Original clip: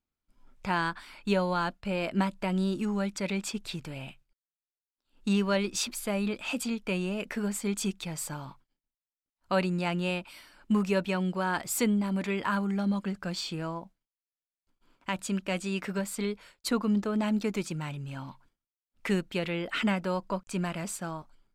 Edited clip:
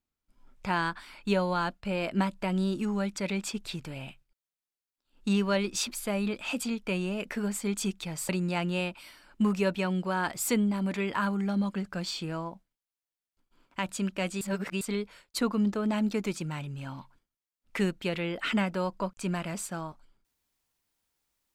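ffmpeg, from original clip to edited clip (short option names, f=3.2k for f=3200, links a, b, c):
-filter_complex "[0:a]asplit=4[a][b][c][d];[a]atrim=end=8.292[e];[b]atrim=start=9.588:end=15.712[f];[c]atrim=start=15.708:end=16.112,asetpts=PTS-STARTPTS,areverse[g];[d]atrim=start=16.108[h];[e][f]acrossfade=d=0.004:c1=hsin:c2=hsin[i];[i][g]acrossfade=d=0.004:c1=hsin:c2=hsin[j];[j][h]acrossfade=d=0.004:c1=hsin:c2=hsin"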